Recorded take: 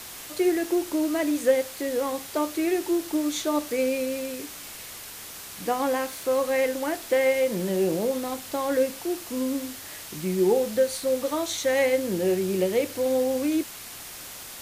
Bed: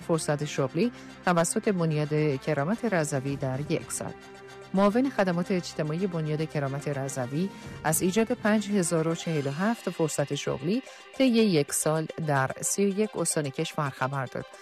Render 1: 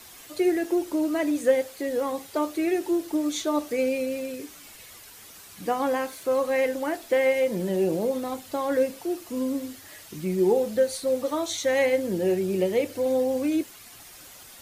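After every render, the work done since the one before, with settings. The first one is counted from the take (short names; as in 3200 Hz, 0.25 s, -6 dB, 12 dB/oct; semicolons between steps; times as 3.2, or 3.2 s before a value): denoiser 9 dB, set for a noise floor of -41 dBFS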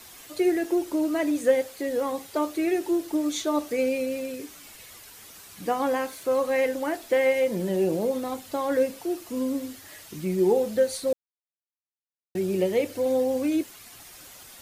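11.13–12.35 mute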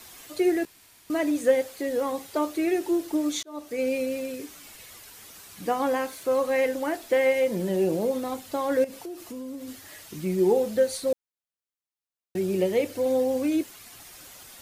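0.65–1.1 room tone; 3.43–3.94 fade in linear; 8.84–9.68 compressor, threshold -34 dBFS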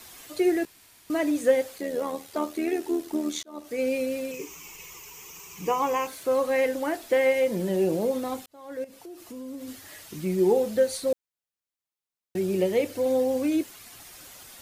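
1.78–3.65 AM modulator 79 Hz, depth 40%; 4.31–6.07 ripple EQ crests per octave 0.75, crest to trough 14 dB; 8.46–9.64 fade in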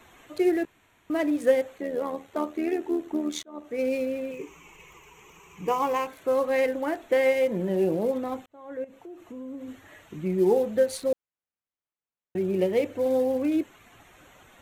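Wiener smoothing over 9 samples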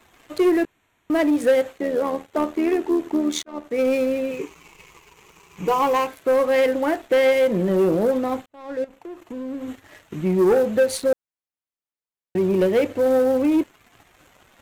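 sample leveller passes 2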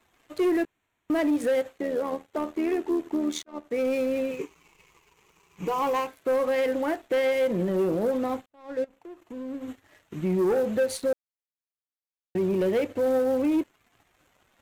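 limiter -18.5 dBFS, peak gain reduction 8 dB; upward expander 1.5:1, over -42 dBFS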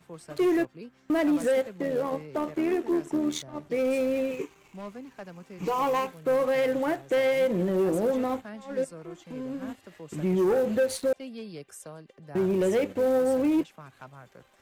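add bed -18 dB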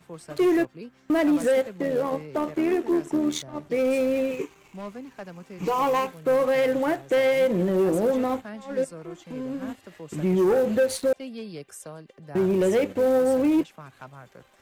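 gain +3 dB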